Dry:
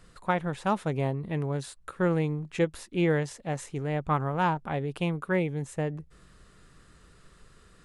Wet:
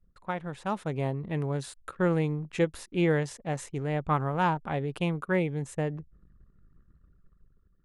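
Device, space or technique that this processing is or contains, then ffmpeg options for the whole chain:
voice memo with heavy noise removal: -af "anlmdn=0.00251,dynaudnorm=framelen=360:gausssize=5:maxgain=6.5dB,volume=-6.5dB"

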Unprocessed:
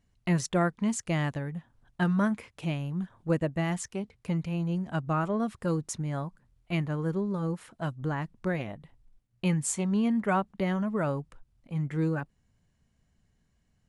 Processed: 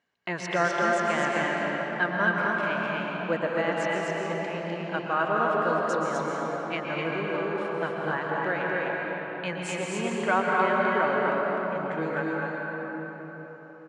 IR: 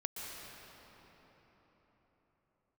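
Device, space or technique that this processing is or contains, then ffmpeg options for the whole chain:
station announcement: -filter_complex "[0:a]highpass=450,lowpass=3900,equalizer=frequency=1600:width_type=o:width=0.23:gain=6.5,aecho=1:1:221.6|253.6:0.251|0.708[link_01];[1:a]atrim=start_sample=2205[link_02];[link_01][link_02]afir=irnorm=-1:irlink=0,volume=6dB"

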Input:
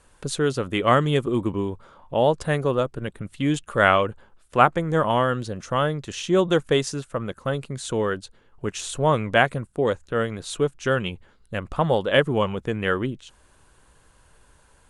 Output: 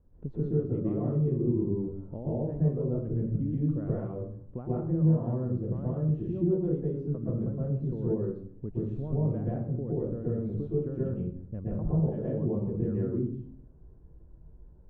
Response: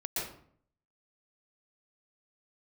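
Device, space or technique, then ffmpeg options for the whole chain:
television next door: -filter_complex "[0:a]acompressor=threshold=-26dB:ratio=6,lowpass=270[link_01];[1:a]atrim=start_sample=2205[link_02];[link_01][link_02]afir=irnorm=-1:irlink=0,volume=1dB"

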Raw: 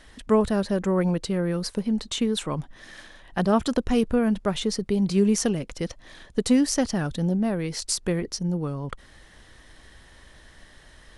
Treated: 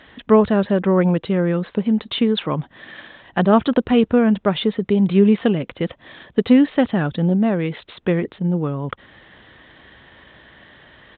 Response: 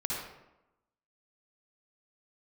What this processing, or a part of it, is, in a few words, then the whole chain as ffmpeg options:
Bluetooth headset: -af "highpass=110,aresample=8000,aresample=44100,volume=7dB" -ar 16000 -c:a sbc -b:a 64k

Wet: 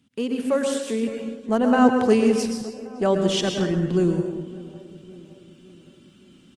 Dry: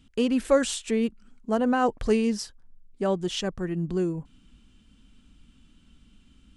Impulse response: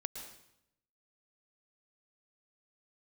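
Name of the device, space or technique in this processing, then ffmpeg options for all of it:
far-field microphone of a smart speaker: -filter_complex "[0:a]asplit=2[link_01][link_02];[link_02]adelay=562,lowpass=frequency=1200:poles=1,volume=-17.5dB,asplit=2[link_03][link_04];[link_04]adelay=562,lowpass=frequency=1200:poles=1,volume=0.53,asplit=2[link_05][link_06];[link_06]adelay=562,lowpass=frequency=1200:poles=1,volume=0.53,asplit=2[link_07][link_08];[link_08]adelay=562,lowpass=frequency=1200:poles=1,volume=0.53,asplit=2[link_09][link_10];[link_10]adelay=562,lowpass=frequency=1200:poles=1,volume=0.53[link_11];[link_01][link_03][link_05][link_07][link_09][link_11]amix=inputs=6:normalize=0,asettb=1/sr,asplit=3[link_12][link_13][link_14];[link_12]atrim=end=2.104[link_15];[link_13]atrim=start=2.1:end=3.46,asetpts=PTS-STARTPTS,afade=type=in:duration=0.004:curve=qsin,afade=type=out:start_time=1.356:duration=0.004:curve=qsin,asubboost=boost=8.5:cutoff=87[link_16];[link_14]atrim=start=3.456[link_17];[link_15][link_16]acrossfade=duration=0.004:curve1=hsin:curve2=qsin[link_18];[link_18][link_17]acrossfade=duration=0.004:curve1=qsin:curve2=hsin[link_19];[1:a]atrim=start_sample=2205[link_20];[link_19][link_20]afir=irnorm=-1:irlink=0,highpass=frequency=110:width=0.5412,highpass=frequency=110:width=1.3066,dynaudnorm=framelen=220:gausssize=13:maxgain=8dB" -ar 48000 -c:a libopus -b:a 24k

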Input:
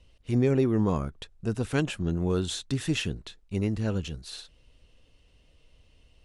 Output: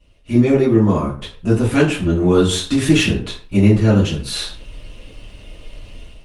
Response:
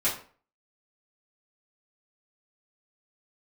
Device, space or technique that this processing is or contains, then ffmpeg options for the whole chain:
speakerphone in a meeting room: -filter_complex "[0:a]deesser=0.6,bandreject=frequency=262.6:width_type=h:width=4,bandreject=frequency=525.2:width_type=h:width=4,bandreject=frequency=787.8:width_type=h:width=4,bandreject=frequency=1050.4:width_type=h:width=4,bandreject=frequency=1313:width_type=h:width=4,bandreject=frequency=1575.6:width_type=h:width=4,asettb=1/sr,asplit=3[link_01][link_02][link_03];[link_01]atrim=end=1.774[link_04];[link_02]atrim=start=1.77:end=3.17,asetpts=PTS-STARTPTS,afade=type=in:duration=0.004:curve=qsin,afade=type=out:start_time=1.396:duration=0.004:curve=qsin,equalizer=frequency=140:width_type=o:width=0.43:gain=-3.5[link_05];[link_03]atrim=start=3.166[link_06];[link_04][link_05]acrossfade=duration=0.004:curve1=hsin:curve2=qsin[link_07];[link_07][link_06]acrossfade=duration=0.004:curve1=qsin:curve2=hsin[link_08];[1:a]atrim=start_sample=2205[link_09];[link_08][link_09]afir=irnorm=-1:irlink=0,dynaudnorm=framelen=120:gausssize=5:maxgain=16dB,volume=-1dB" -ar 48000 -c:a libopus -b:a 32k

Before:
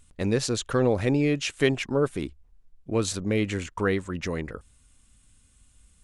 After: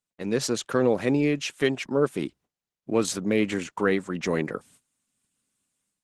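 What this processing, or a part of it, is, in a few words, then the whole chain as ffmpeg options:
video call: -af "highpass=frequency=150:width=0.5412,highpass=frequency=150:width=1.3066,dynaudnorm=framelen=210:gausssize=3:maxgain=16.5dB,agate=range=-20dB:threshold=-44dB:ratio=16:detection=peak,volume=-8.5dB" -ar 48000 -c:a libopus -b:a 16k

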